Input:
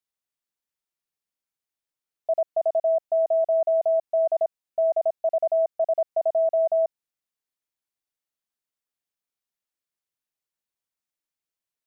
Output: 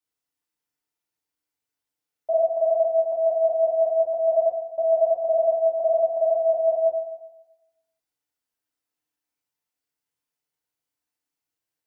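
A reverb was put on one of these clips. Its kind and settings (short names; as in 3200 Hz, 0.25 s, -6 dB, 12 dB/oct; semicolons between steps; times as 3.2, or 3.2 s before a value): FDN reverb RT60 0.99 s, low-frequency decay 0.85×, high-frequency decay 0.6×, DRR -7.5 dB; gain -4.5 dB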